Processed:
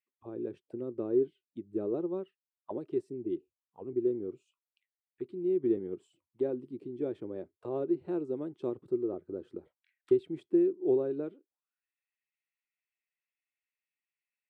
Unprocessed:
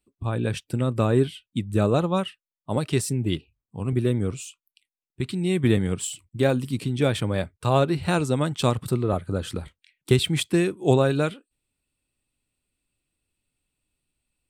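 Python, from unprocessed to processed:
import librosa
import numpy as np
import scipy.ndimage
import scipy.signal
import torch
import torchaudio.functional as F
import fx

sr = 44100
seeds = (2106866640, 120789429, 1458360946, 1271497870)

y = fx.low_shelf(x, sr, hz=220.0, db=-4.0)
y = fx.auto_wah(y, sr, base_hz=360.0, top_hz=2000.0, q=5.9, full_db=-28.5, direction='down')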